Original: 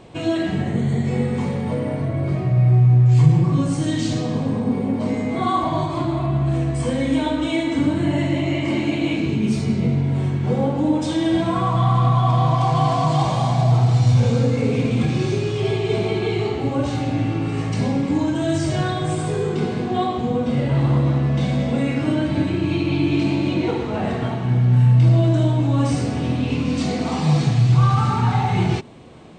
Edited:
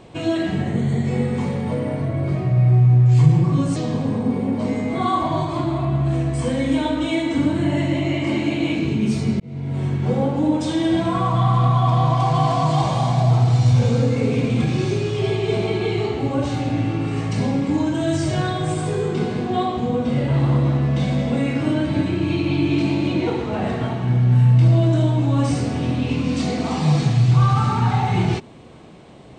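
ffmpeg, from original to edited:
ffmpeg -i in.wav -filter_complex "[0:a]asplit=3[link_01][link_02][link_03];[link_01]atrim=end=3.762[link_04];[link_02]atrim=start=4.168:end=9.81,asetpts=PTS-STARTPTS,afade=type=out:start_time=5.638:duration=0.004:curve=hsin[link_05];[link_03]atrim=start=9.81,asetpts=PTS-STARTPTS,afade=type=in:duration=0.51[link_06];[link_05][link_06]concat=n=2:v=0:a=1[link_07];[link_04][link_07]acrossfade=duration=0.004:curve1=hsin:curve2=hsin" out.wav

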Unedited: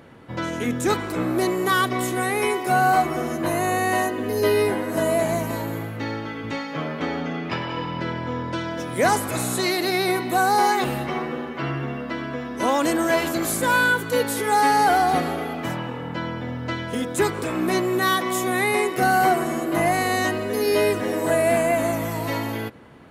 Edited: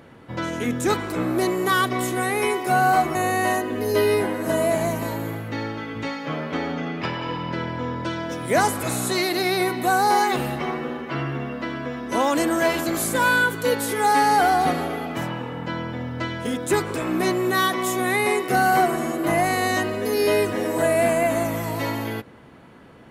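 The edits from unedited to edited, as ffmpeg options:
ffmpeg -i in.wav -filter_complex "[0:a]asplit=2[link_01][link_02];[link_01]atrim=end=3.152[link_03];[link_02]atrim=start=3.628[link_04];[link_03][link_04]acrossfade=duration=0.004:curve1=hsin:curve2=hsin" out.wav

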